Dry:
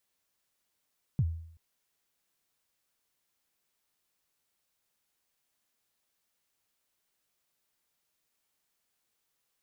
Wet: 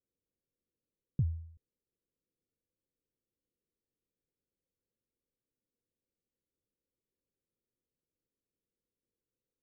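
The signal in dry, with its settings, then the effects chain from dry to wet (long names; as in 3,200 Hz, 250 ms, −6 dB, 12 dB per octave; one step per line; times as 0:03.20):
synth kick length 0.38 s, from 160 Hz, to 82 Hz, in 52 ms, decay 0.65 s, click off, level −21 dB
Chebyshev low-pass filter 520 Hz, order 5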